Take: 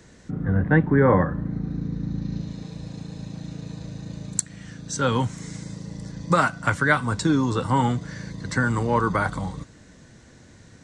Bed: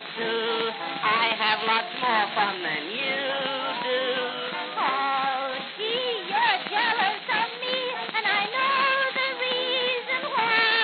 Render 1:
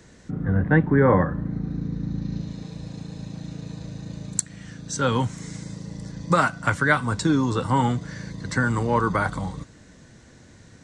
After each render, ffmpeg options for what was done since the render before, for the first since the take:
-af anull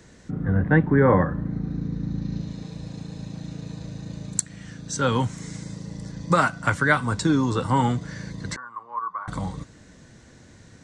-filter_complex "[0:a]asettb=1/sr,asplit=3[a][b][c];[a]atrim=end=8.564[d];[b]atrim=start=8.56:end=9.28,asetpts=PTS-STARTPTS,afade=t=in:d=0.004:c=qsin,afade=t=out:st=0.716:d=0.004:c=qsin,bandpass=f=1.1k:t=q:w=10[e];[c]atrim=start=9.276[f];[d][e]acrossfade=d=0.004:c1=hsin:c2=qsin[g];[g][f]acrossfade=d=0.004:c1=qsin:c2=hsin"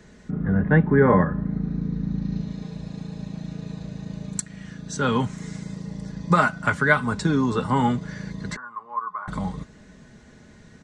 -af "bass=f=250:g=1,treble=f=4k:g=-6,aecho=1:1:4.8:0.48"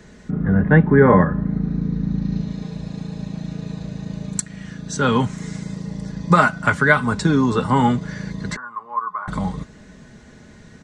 -af "volume=4.5dB,alimiter=limit=-1dB:level=0:latency=1"

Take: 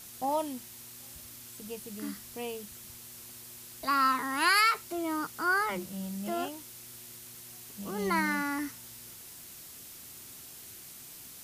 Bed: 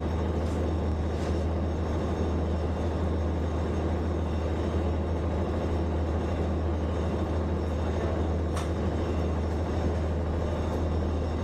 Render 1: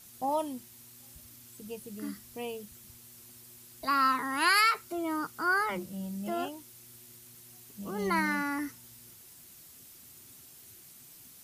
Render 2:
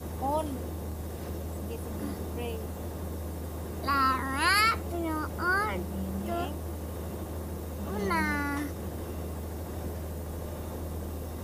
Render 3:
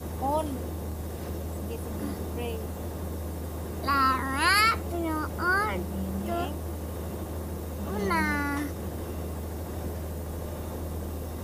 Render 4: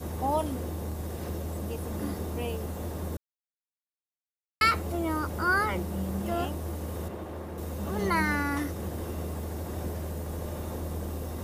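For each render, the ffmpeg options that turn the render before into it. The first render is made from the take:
-af "afftdn=nr=7:nf=-48"
-filter_complex "[1:a]volume=-8.5dB[a];[0:a][a]amix=inputs=2:normalize=0"
-af "volume=2dB"
-filter_complex "[0:a]asettb=1/sr,asplit=3[a][b][c];[a]atrim=end=7.084[d];[b]atrim=start=7.08:end=7.58,asetpts=PTS-STARTPTS,afade=t=in:d=0.004:c=qsin,afade=t=out:st=0.496:d=0.004:c=qsin,bass=f=250:g=-6,treble=f=4k:g=-11[e];[c]atrim=start=7.576[f];[d][e]acrossfade=d=0.004:c1=hsin:c2=qsin[g];[g][f]acrossfade=d=0.004:c1=qsin:c2=hsin,asplit=3[h][i][j];[h]atrim=end=3.17,asetpts=PTS-STARTPTS,afade=t=out:st=3.166:d=0.004:c=hsin[k];[i]atrim=start=3.17:end=4.61,asetpts=PTS-STARTPTS,volume=0[l];[j]atrim=start=4.61,asetpts=PTS-STARTPTS,afade=t=in:d=0.004:c=hsin[m];[k][l][m]concat=n=3:v=0:a=1"

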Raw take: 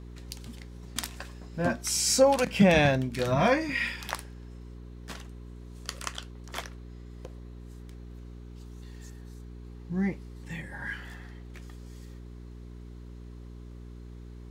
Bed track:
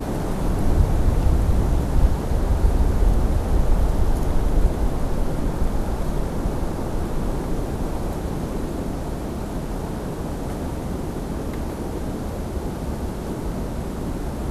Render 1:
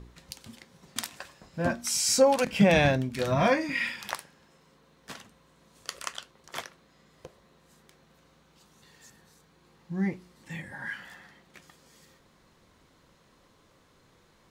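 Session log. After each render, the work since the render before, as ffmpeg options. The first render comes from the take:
-af "bandreject=f=60:t=h:w=4,bandreject=f=120:t=h:w=4,bandreject=f=180:t=h:w=4,bandreject=f=240:t=h:w=4,bandreject=f=300:t=h:w=4,bandreject=f=360:t=h:w=4,bandreject=f=420:t=h:w=4"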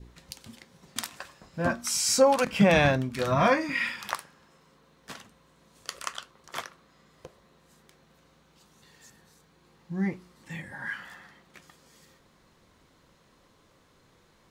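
-af "adynamicequalizer=threshold=0.00447:dfrequency=1200:dqfactor=2.4:tfrequency=1200:tqfactor=2.4:attack=5:release=100:ratio=0.375:range=3.5:mode=boostabove:tftype=bell"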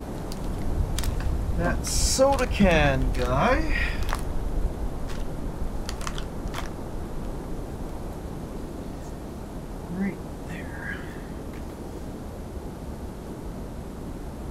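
-filter_complex "[1:a]volume=-8.5dB[a];[0:a][a]amix=inputs=2:normalize=0"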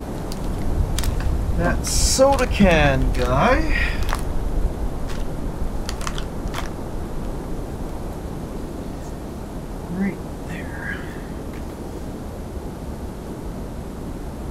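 -af "volume=5dB,alimiter=limit=-3dB:level=0:latency=1"

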